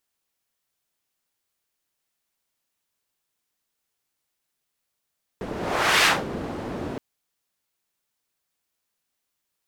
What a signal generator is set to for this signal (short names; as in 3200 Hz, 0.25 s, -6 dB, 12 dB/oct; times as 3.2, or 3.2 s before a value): whoosh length 1.57 s, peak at 0.64, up 0.57 s, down 0.21 s, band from 320 Hz, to 2200 Hz, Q 0.76, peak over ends 14 dB